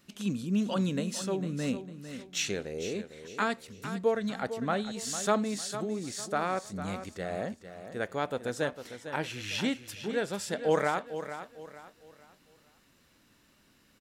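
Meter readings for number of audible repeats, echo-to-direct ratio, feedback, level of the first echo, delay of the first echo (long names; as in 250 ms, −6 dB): 3, −10.5 dB, 34%, −11.0 dB, 452 ms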